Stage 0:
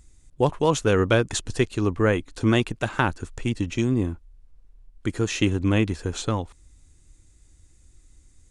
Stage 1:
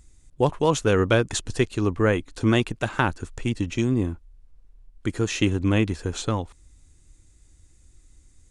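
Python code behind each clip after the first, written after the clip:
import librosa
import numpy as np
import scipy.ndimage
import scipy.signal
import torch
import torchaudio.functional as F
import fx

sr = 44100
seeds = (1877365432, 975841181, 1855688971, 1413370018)

y = x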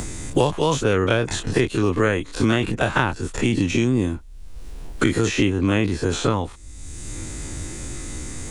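y = fx.spec_dilate(x, sr, span_ms=60)
y = fx.band_squash(y, sr, depth_pct=100)
y = F.gain(torch.from_numpy(y), -1.0).numpy()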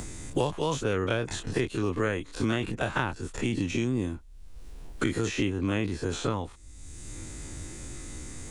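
y = fx.quant_float(x, sr, bits=8)
y = F.gain(torch.from_numpy(y), -8.5).numpy()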